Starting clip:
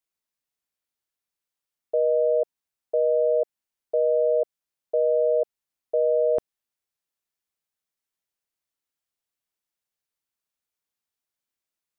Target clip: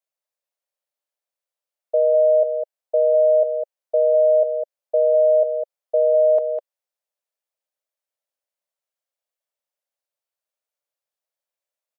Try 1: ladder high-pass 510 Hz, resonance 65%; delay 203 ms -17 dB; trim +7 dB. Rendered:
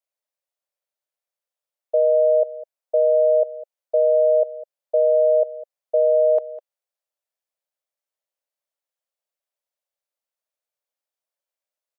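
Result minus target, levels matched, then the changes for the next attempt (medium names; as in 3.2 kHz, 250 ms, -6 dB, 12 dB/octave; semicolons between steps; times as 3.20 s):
echo-to-direct -10 dB
change: delay 203 ms -7 dB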